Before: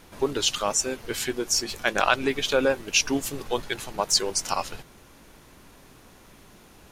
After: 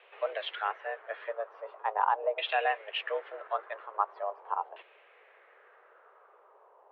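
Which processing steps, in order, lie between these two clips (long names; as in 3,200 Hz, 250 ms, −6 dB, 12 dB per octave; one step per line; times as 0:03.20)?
auto-filter low-pass saw down 0.42 Hz 600–2,600 Hz
single-sideband voice off tune +210 Hz 210–3,400 Hz
level −7.5 dB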